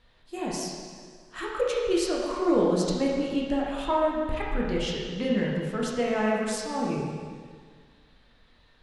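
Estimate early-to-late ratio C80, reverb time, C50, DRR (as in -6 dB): 1.5 dB, 1.8 s, 0.0 dB, -4.0 dB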